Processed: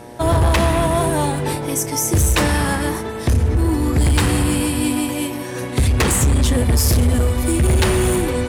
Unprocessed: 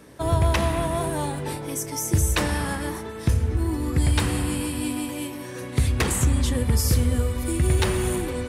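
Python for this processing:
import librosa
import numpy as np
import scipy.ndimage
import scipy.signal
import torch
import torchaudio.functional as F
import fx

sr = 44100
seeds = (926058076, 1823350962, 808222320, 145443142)

y = fx.dmg_buzz(x, sr, base_hz=120.0, harmonics=8, level_db=-47.0, tilt_db=-1, odd_only=False)
y = fx.fold_sine(y, sr, drive_db=5, ceiling_db=-10.5)
y = fx.cheby_harmonics(y, sr, harmonics=(7,), levels_db=(-32,), full_scale_db=-9.5)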